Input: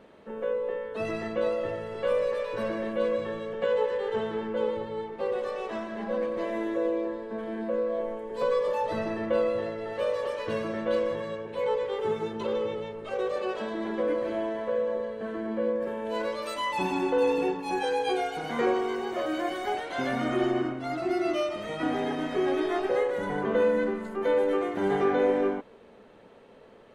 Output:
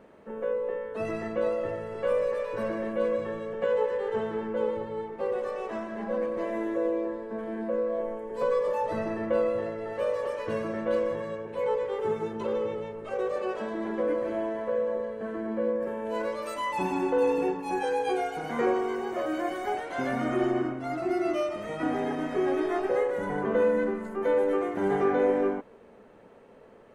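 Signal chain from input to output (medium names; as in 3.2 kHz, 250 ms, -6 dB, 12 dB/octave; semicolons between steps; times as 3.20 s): peaking EQ 3.7 kHz -8.5 dB 0.9 oct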